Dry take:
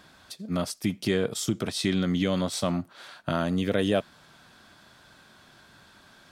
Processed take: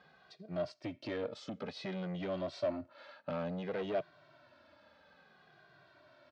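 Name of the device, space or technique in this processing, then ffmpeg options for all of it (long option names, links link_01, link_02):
barber-pole flanger into a guitar amplifier: -filter_complex "[0:a]asplit=2[link_01][link_02];[link_02]adelay=2,afreqshift=-0.57[link_03];[link_01][link_03]amix=inputs=2:normalize=1,asoftclip=type=tanh:threshold=-28dB,highpass=93,equalizer=frequency=100:width_type=q:width=4:gain=-3,equalizer=frequency=210:width_type=q:width=4:gain=-6,equalizer=frequency=600:width_type=q:width=4:gain=10,equalizer=frequency=3400:width_type=q:width=4:gain=-6,lowpass=frequency=4200:width=0.5412,lowpass=frequency=4200:width=1.3066,volume=-5.5dB"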